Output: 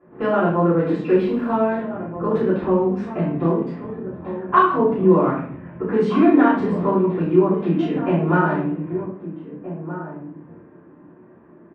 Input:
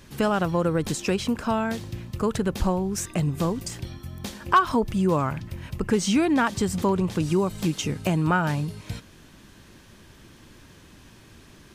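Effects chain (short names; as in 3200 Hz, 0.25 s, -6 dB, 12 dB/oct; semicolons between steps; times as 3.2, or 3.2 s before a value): Wiener smoothing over 9 samples; Chebyshev high-pass 280 Hz, order 2; low-pass opened by the level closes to 1100 Hz, open at -22 dBFS; 1.07–1.51 requantised 8-bit, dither triangular; air absorption 480 m; doubler 30 ms -6.5 dB; outdoor echo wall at 270 m, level -11 dB; shoebox room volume 76 m³, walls mixed, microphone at 3.1 m; gain -6 dB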